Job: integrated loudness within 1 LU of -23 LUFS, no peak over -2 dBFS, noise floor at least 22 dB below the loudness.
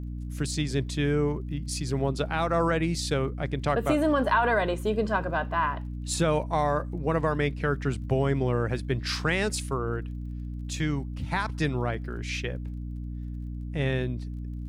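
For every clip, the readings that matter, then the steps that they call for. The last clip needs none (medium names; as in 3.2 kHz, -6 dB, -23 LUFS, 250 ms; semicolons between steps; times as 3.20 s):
tick rate 27 per s; hum 60 Hz; highest harmonic 300 Hz; hum level -32 dBFS; loudness -28.5 LUFS; peak level -11.0 dBFS; loudness target -23.0 LUFS
-> de-click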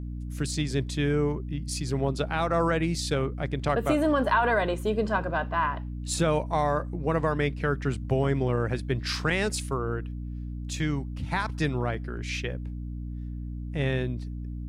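tick rate 0.14 per s; hum 60 Hz; highest harmonic 300 Hz; hum level -32 dBFS
-> hum notches 60/120/180/240/300 Hz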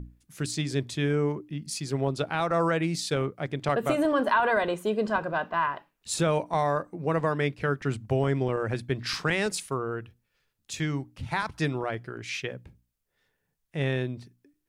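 hum not found; loudness -28.5 LUFS; peak level -11.5 dBFS; loudness target -23.0 LUFS
-> trim +5.5 dB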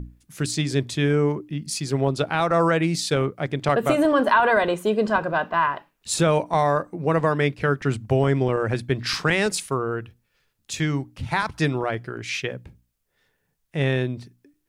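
loudness -23.0 LUFS; peak level -6.0 dBFS; noise floor -73 dBFS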